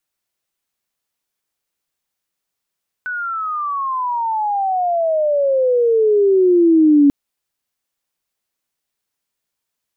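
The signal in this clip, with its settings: chirp logarithmic 1500 Hz -> 280 Hz -21 dBFS -> -7 dBFS 4.04 s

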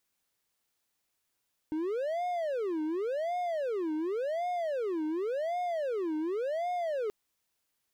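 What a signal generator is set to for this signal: siren wail 307–718 Hz 0.9/s triangle -27.5 dBFS 5.38 s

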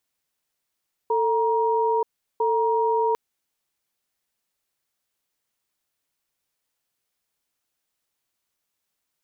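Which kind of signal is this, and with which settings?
cadence 446 Hz, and 944 Hz, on 0.93 s, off 0.37 s, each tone -21.5 dBFS 2.05 s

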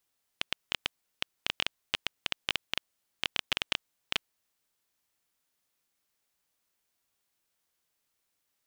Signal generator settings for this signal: random clicks 9.2/s -9 dBFS 3.80 s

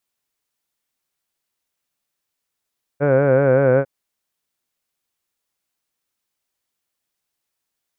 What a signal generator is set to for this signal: formant vowel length 0.85 s, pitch 139 Hz, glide -1 st, F1 520 Hz, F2 1500 Hz, F3 2300 Hz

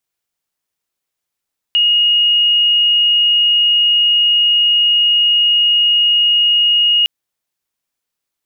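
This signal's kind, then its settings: tone sine 2870 Hz -9 dBFS 5.31 s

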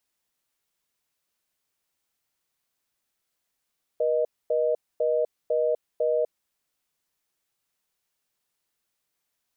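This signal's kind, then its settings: call progress tone reorder tone, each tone -23.5 dBFS 2.43 s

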